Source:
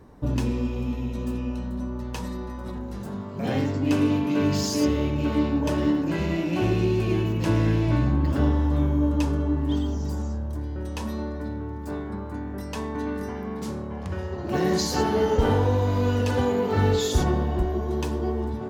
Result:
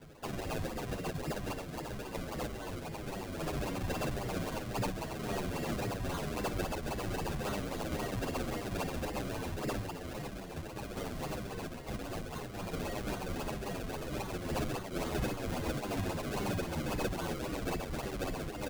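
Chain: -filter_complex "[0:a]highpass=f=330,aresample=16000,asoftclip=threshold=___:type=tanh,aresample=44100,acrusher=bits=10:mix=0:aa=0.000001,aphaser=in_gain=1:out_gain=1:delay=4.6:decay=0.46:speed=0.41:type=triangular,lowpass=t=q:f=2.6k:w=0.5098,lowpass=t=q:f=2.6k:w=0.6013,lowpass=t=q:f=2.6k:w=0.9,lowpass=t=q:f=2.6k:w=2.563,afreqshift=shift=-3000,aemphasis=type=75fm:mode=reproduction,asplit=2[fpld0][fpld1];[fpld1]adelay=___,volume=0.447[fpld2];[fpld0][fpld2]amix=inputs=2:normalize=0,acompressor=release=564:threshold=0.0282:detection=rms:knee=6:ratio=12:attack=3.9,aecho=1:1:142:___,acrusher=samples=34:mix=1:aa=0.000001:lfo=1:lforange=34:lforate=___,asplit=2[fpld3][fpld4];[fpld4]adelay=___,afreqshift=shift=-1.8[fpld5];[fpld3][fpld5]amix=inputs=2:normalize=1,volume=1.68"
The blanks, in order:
0.075, 29, 0.0794, 3.7, 8.8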